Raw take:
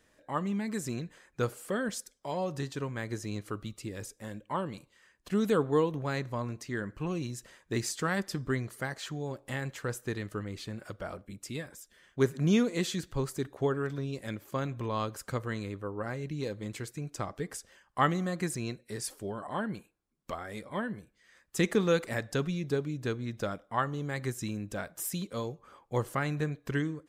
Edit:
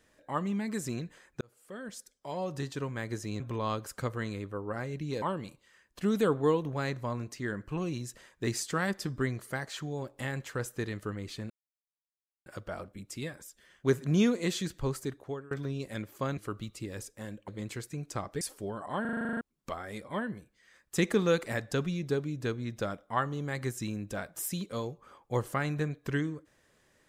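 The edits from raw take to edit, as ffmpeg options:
-filter_complex "[0:a]asplit=19[s0][s1][s2][s3][s4][s5][s6][s7][s8][s9][s10][s11][s12][s13][s14][s15][s16][s17][s18];[s0]atrim=end=1.41,asetpts=PTS-STARTPTS,afade=t=out:st=1.406:d=0.004:c=hsin[s19];[s1]atrim=start=1.41:end=3.402,asetpts=PTS-STARTPTS,afade=t=in:d=1.27[s20];[s2]atrim=start=14.698:end=16.522[s21];[s3]atrim=start=4.508:end=10.79,asetpts=PTS-STARTPTS,afade=t=out:st=6.278:d=0.004:c=hsin,apad=pad_dur=0.96[s22];[s4]atrim=start=10.79:end=13.84,asetpts=PTS-STARTPTS,afade=t=in:d=0.004:c=hsin,afade=t=out:st=2.5:d=0.55:silence=0.0630957[s23];[s5]atrim=start=13.84:end=14.702,asetpts=PTS-STARTPTS,afade=t=in:d=0.004:c=hsin:silence=0.0630957[s24];[s6]atrim=start=3.398:end=4.512[s25];[s7]atrim=start=16.518:end=17.452[s26];[s8]atrim=start=19.018:end=19.662[s27];[s9]atrim=start=19.618:end=19.662[s28];[s10]atrim=start=19.618:end=19.662[s29];[s11]atrim=start=19.618:end=19.662[s30];[s12]atrim=start=19.618:end=19.662[s31];[s13]atrim=start=19.618:end=19.662[s32];[s14]atrim=start=19.618:end=19.662[s33];[s15]atrim=start=19.618:end=19.662[s34];[s16]atrim=start=19.618:end=19.662[s35];[s17]atrim=start=19.618:end=19.662[s36];[s18]atrim=start=20.018[s37];[s19][s20]concat=n=2:v=0:a=1[s38];[s38][s21]acrossfade=d=0.004:c1=hsin:c2=hsin[s39];[s22][s23][s24]concat=n=3:v=0:a=1[s40];[s39][s40]acrossfade=d=0.004:c1=hsin:c2=hsin[s41];[s41][s25]acrossfade=d=0.004:c1=hsin:c2=hsin[s42];[s42][s26]acrossfade=d=0.004:c1=hsin:c2=hsin[s43];[s43][s27]acrossfade=d=0.004:c1=hsin:c2=hsin[s44];[s44][s28]acrossfade=d=0.004:c1=hsin:c2=hsin[s45];[s45][s29]acrossfade=d=0.004:c1=hsin:c2=hsin[s46];[s46][s30]acrossfade=d=0.004:c1=hsin:c2=hsin[s47];[s47][s31]acrossfade=d=0.004:c1=hsin:c2=hsin[s48];[s48][s32]acrossfade=d=0.004:c1=hsin:c2=hsin[s49];[s49][s33]acrossfade=d=0.004:c1=hsin:c2=hsin[s50];[s50][s34]acrossfade=d=0.004:c1=hsin:c2=hsin[s51];[s51][s35]acrossfade=d=0.004:c1=hsin:c2=hsin[s52];[s52][s36]acrossfade=d=0.004:c1=hsin:c2=hsin[s53];[s53][s37]acrossfade=d=0.004:c1=hsin:c2=hsin"

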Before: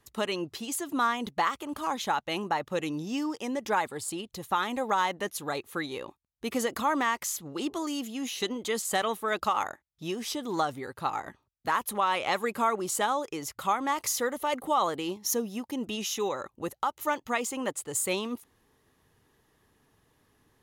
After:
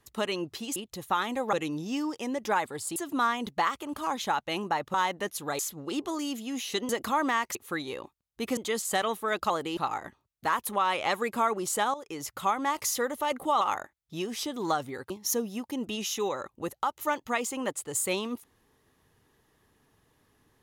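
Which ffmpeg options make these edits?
-filter_complex "[0:a]asplit=14[s0][s1][s2][s3][s4][s5][s6][s7][s8][s9][s10][s11][s12][s13];[s0]atrim=end=0.762[s14];[s1]atrim=start=4.168:end=4.942[s15];[s2]atrim=start=2.738:end=4.172[s16];[s3]atrim=start=0.758:end=2.742[s17];[s4]atrim=start=4.938:end=5.592[s18];[s5]atrim=start=7.268:end=8.572[s19];[s6]atrim=start=6.608:end=7.272[s20];[s7]atrim=start=5.588:end=6.612[s21];[s8]atrim=start=8.568:end=9.502[s22];[s9]atrim=start=14.828:end=15.102[s23];[s10]atrim=start=10.988:end=13.16,asetpts=PTS-STARTPTS,afade=t=out:st=2.168:d=0.004:c=hsin:silence=0.223872[s24];[s11]atrim=start=13.16:end=14.832,asetpts=PTS-STARTPTS,afade=t=in:d=0.29:silence=0.223872[s25];[s12]atrim=start=9.498:end=10.992[s26];[s13]atrim=start=15.098[s27];[s14][s15]acrossfade=d=0.004:c1=hsin:c2=hsin[s28];[s28][s16]acrossfade=d=0.004:c1=hsin:c2=hsin[s29];[s29][s17]acrossfade=d=0.004:c1=hsin:c2=hsin[s30];[s30][s18]acrossfade=d=0.004:c1=hsin:c2=hsin[s31];[s31][s19]acrossfade=d=0.004:c1=hsin:c2=hsin[s32];[s32][s20]acrossfade=d=0.004:c1=hsin:c2=hsin[s33];[s33][s21]acrossfade=d=0.004:c1=hsin:c2=hsin[s34];[s34][s22]acrossfade=d=0.004:c1=hsin:c2=hsin[s35];[s35][s23]acrossfade=d=0.004:c1=hsin:c2=hsin[s36];[s24][s25]concat=n=2:v=0:a=1[s37];[s36][s37]acrossfade=d=0.004:c1=hsin:c2=hsin[s38];[s38][s26]acrossfade=d=0.004:c1=hsin:c2=hsin[s39];[s39][s27]acrossfade=d=0.004:c1=hsin:c2=hsin"

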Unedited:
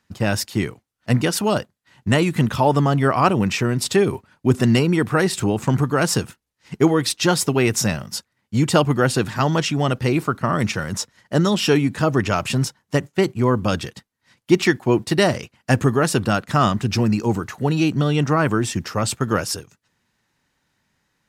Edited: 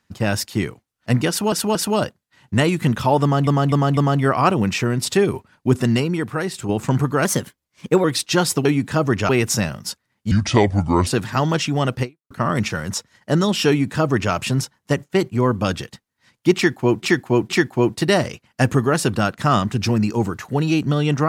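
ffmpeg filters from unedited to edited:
-filter_complex "[0:a]asplit=16[s0][s1][s2][s3][s4][s5][s6][s7][s8][s9][s10][s11][s12][s13][s14][s15];[s0]atrim=end=1.522[s16];[s1]atrim=start=1.288:end=1.522[s17];[s2]atrim=start=1.288:end=3.012[s18];[s3]atrim=start=2.758:end=3.012[s19];[s4]atrim=start=2.758:end=3.012[s20];[s5]atrim=start=2.758:end=5.48,asetpts=PTS-STARTPTS,afade=t=out:st=1.742:d=0.98:c=qua:silence=0.473151[s21];[s6]atrim=start=5.48:end=6.044,asetpts=PTS-STARTPTS,afade=t=in:d=0.004:c=hsin:silence=0.473151[s22];[s7]atrim=start=6.04:end=6.95,asetpts=PTS-STARTPTS,asetrate=50715,aresample=44100[s23];[s8]atrim=start=6.946:end=7.562[s24];[s9]atrim=start=11.718:end=12.362[s25];[s10]atrim=start=7.558:end=8.584[s26];[s11]atrim=start=8.58:end=9.1,asetpts=PTS-STARTPTS,asetrate=30429,aresample=44100[s27];[s12]atrim=start=9.096:end=10.34,asetpts=PTS-STARTPTS,afade=t=out:st=0.964:d=0.28:c=exp[s28];[s13]atrim=start=10.34:end=15.062,asetpts=PTS-STARTPTS,afade=t=in:d=0.004:c=hsin[s29];[s14]atrim=start=14.588:end=15.062[s30];[s15]atrim=start=14.588[s31];[s16][s17]acrossfade=d=0.004:c1=hsin:c2=hsin[s32];[s32][s18]acrossfade=d=0.004:c1=hsin:c2=hsin[s33];[s33][s19]acrossfade=d=0.004:c1=hsin:c2=hsin[s34];[s34][s20]acrossfade=d=0.004:c1=hsin:c2=hsin[s35];[s21][s22]concat=n=2:v=0:a=1[s36];[s35][s36]acrossfade=d=0.004:c1=hsin:c2=hsin[s37];[s37][s23]acrossfade=d=0.004:c1=hsin:c2=hsin[s38];[s38][s24]acrossfade=d=0.004:c1=hsin:c2=hsin[s39];[s39][s25]acrossfade=d=0.004:c1=hsin:c2=hsin[s40];[s40][s26]acrossfade=d=0.004:c1=hsin:c2=hsin[s41];[s41][s27]acrossfade=d=0.004:c1=hsin:c2=hsin[s42];[s28][s29]concat=n=2:v=0:a=1[s43];[s42][s43]acrossfade=d=0.004:c1=hsin:c2=hsin[s44];[s44][s30]acrossfade=d=0.004:c1=hsin:c2=hsin[s45];[s45][s31]acrossfade=d=0.004:c1=hsin:c2=hsin"

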